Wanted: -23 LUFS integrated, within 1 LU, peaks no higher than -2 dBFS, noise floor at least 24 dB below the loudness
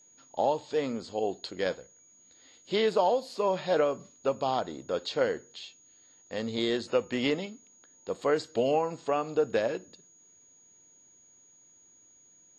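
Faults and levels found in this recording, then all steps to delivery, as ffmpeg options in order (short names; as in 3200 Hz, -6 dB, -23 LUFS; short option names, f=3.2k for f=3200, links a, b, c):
steady tone 6700 Hz; tone level -57 dBFS; loudness -30.0 LUFS; peak -13.5 dBFS; loudness target -23.0 LUFS
-> -af "bandreject=f=6.7k:w=30"
-af "volume=7dB"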